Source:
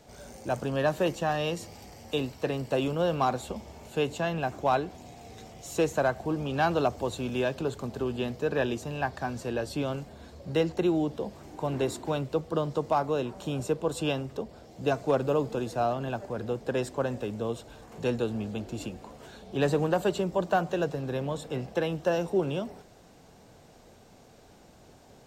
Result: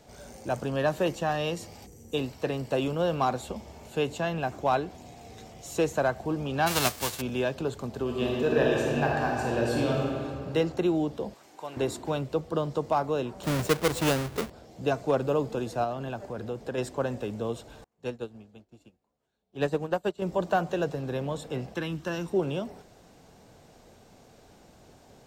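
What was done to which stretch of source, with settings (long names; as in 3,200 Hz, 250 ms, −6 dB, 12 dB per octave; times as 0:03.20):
0:01.86–0:02.14: gain on a spectral selection 530–5,700 Hz −15 dB
0:06.66–0:07.20: spectral envelope flattened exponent 0.3
0:08.02–0:10.23: thrown reverb, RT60 2.4 s, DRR −3 dB
0:11.34–0:11.77: high-pass filter 1,200 Hz 6 dB per octave
0:13.43–0:14.50: each half-wave held at its own peak
0:15.84–0:16.78: downward compressor 1.5 to 1, threshold −34 dBFS
0:17.84–0:20.22: expander for the loud parts 2.5 to 1, over −44 dBFS
0:21.74–0:22.34: flat-topped bell 590 Hz −10 dB 1.2 octaves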